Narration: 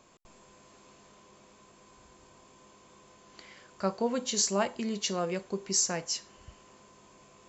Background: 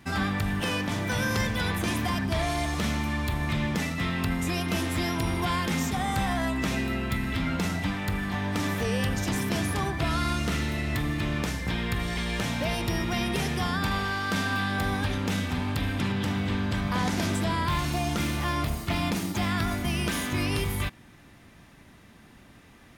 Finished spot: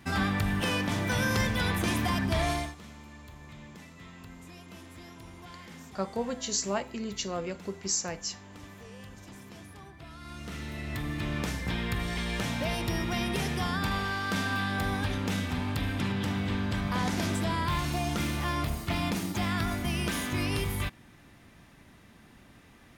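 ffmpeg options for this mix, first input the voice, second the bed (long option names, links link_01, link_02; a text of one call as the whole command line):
ffmpeg -i stem1.wav -i stem2.wav -filter_complex "[0:a]adelay=2150,volume=-2.5dB[link_01];[1:a]volume=17dB,afade=type=out:start_time=2.51:duration=0.24:silence=0.105925,afade=type=in:start_time=10.19:duration=1.31:silence=0.133352[link_02];[link_01][link_02]amix=inputs=2:normalize=0" out.wav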